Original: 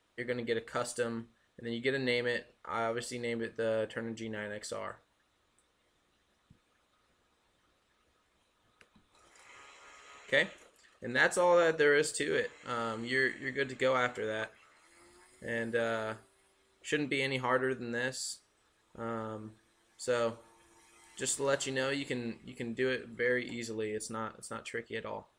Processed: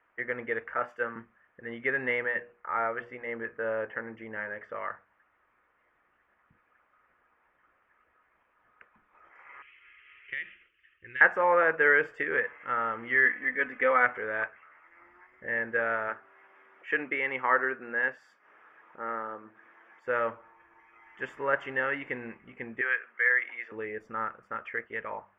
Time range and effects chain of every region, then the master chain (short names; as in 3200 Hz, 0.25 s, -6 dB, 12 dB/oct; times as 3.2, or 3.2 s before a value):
0.74–1.16 HPF 160 Hz 6 dB/oct + doubler 25 ms -12 dB + three-band expander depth 100%
2.23–4.76 LPF 2500 Hz 6 dB/oct + notches 60/120/180/240/300/360/420/480 Hz
9.62–11.21 EQ curve 100 Hz 0 dB, 170 Hz -11 dB, 240 Hz -20 dB, 340 Hz -7 dB, 570 Hz -26 dB, 830 Hz -29 dB, 3000 Hz +8 dB, 9200 Hz -30 dB + compressor 3:1, threshold -36 dBFS
13.25–14.05 bell 64 Hz -7 dB 1.7 oct + comb 4 ms, depth 59%
16.08–20.04 HPF 210 Hz + upward compressor, threshold -50 dBFS
22.81–23.72 BPF 520–2400 Hz + tilt +4.5 dB/oct
whole clip: inverse Chebyshev low-pass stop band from 3800 Hz, stop band 40 dB; tilt shelf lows -10 dB, about 740 Hz; de-hum 99.18 Hz, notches 2; gain +3.5 dB